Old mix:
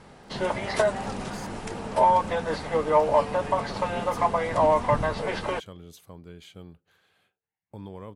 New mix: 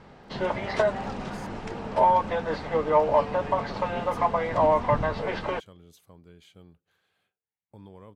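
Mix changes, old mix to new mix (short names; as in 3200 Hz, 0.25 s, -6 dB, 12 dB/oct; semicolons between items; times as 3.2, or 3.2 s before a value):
speech -7.0 dB; background: add air absorption 120 m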